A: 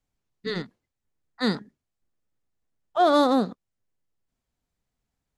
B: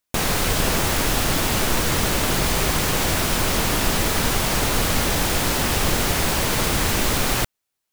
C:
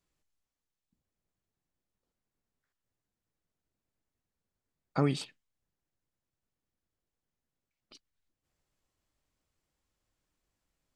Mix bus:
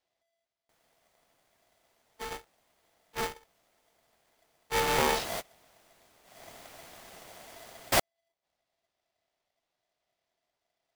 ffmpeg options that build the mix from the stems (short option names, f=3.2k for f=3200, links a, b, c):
-filter_complex "[0:a]lowpass=2.4k,aeval=exprs='abs(val(0))':c=same,aeval=exprs='val(0)*sgn(sin(2*PI*210*n/s))':c=same,adelay=1750,volume=-9dB[a];[1:a]adelay=550,volume=-2dB,afade=t=in:st=5.11:d=0.28:silence=0.375837,afade=t=in:st=6.23:d=0.26:silence=0.237137[b];[2:a]lowpass=f=4.2k:t=q:w=1.9,volume=-2dB,asplit=2[c][d];[d]apad=whole_len=373956[e];[b][e]sidechaingate=range=-28dB:threshold=-58dB:ratio=16:detection=peak[f];[a][f][c]amix=inputs=3:normalize=0,aeval=exprs='val(0)*sgn(sin(2*PI*670*n/s))':c=same"